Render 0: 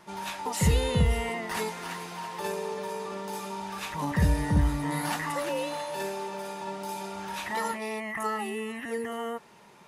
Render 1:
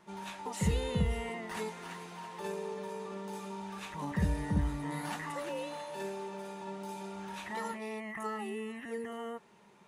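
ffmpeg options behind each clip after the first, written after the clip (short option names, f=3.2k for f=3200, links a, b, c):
-af "equalizer=f=200:t=o:w=0.33:g=6,equalizer=f=400:t=o:w=0.33:g=4,equalizer=f=5k:t=o:w=0.33:g=-4,equalizer=f=12.5k:t=o:w=0.33:g=-9,volume=-8dB"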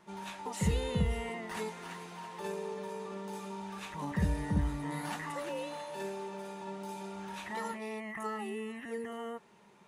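-af anull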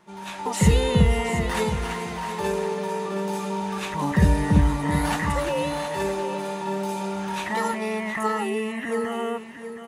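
-af "dynaudnorm=f=130:g=5:m=9dB,aecho=1:1:718|1436:0.316|0.0506,volume=3.5dB"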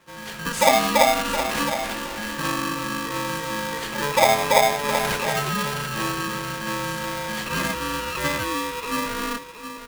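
-af "aeval=exprs='val(0)*sgn(sin(2*PI*720*n/s))':c=same"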